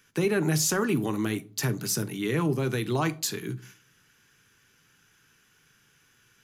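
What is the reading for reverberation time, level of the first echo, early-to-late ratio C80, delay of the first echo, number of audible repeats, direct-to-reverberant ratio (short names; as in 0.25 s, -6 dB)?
0.40 s, none, 26.0 dB, none, none, 11.0 dB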